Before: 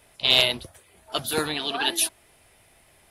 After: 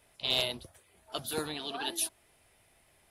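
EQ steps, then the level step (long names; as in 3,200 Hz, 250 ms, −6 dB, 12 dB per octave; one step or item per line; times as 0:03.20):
dynamic equaliser 2,100 Hz, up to −6 dB, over −34 dBFS, Q 0.91
−8.0 dB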